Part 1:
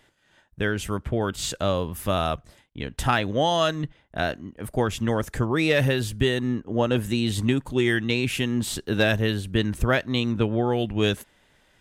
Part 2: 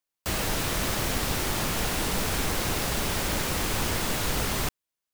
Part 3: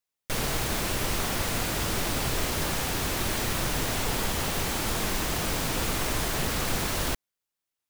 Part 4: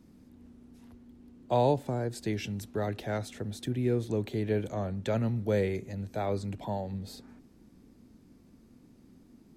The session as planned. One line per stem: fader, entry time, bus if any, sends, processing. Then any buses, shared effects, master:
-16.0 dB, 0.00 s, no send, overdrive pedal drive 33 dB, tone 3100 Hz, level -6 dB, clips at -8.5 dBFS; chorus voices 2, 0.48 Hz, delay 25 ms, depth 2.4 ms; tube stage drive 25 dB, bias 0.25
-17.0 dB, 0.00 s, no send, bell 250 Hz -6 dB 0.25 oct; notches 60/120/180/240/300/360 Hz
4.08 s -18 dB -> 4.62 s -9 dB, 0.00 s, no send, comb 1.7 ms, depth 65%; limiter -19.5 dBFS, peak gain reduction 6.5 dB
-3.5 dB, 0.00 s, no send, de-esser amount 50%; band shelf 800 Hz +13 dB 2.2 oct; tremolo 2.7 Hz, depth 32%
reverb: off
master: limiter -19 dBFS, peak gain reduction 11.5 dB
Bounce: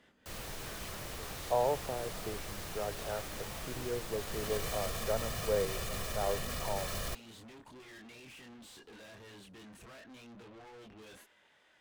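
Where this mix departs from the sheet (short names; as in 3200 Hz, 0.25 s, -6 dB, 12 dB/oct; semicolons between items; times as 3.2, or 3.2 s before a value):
stem 1 -16.0 dB -> -25.5 dB; stem 4 -3.5 dB -> -14.0 dB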